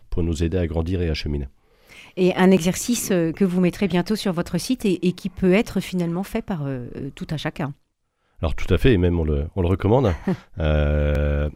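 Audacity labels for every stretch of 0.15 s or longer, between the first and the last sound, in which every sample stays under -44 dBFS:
1.510000	1.870000	silence
7.730000	8.390000	silence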